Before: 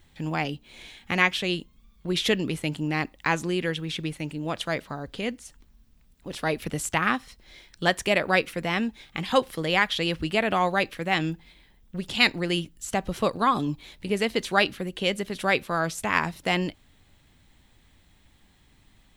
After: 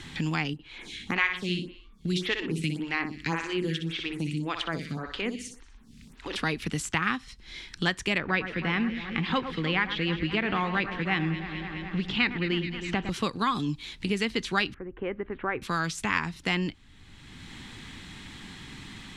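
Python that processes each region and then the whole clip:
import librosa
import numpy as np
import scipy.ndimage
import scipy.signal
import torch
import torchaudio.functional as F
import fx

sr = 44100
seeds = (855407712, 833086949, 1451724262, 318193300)

y = fx.chain(x, sr, fx.echo_feedback(ms=61, feedback_pct=44, wet_db=-6.5),
    fx.stagger_phaser(hz=1.8), at=(0.53, 6.36))
y = fx.chain(y, sr, fx.law_mismatch(coded='mu'),
    fx.lowpass(hz=2700.0, slope=12),
    fx.echo_alternate(ms=106, hz=1900.0, feedback_pct=77, wet_db=-10.0), at=(8.18, 13.1))
y = fx.chain(y, sr, fx.bessel_lowpass(hz=1100.0, order=6),
    fx.peak_eq(hz=180.0, db=-14.0, octaves=0.78), at=(14.74, 15.62))
y = scipy.signal.sosfilt(scipy.signal.butter(2, 7100.0, 'lowpass', fs=sr, output='sos'), y)
y = fx.peak_eq(y, sr, hz=610.0, db=-13.5, octaves=0.82)
y = fx.band_squash(y, sr, depth_pct=70)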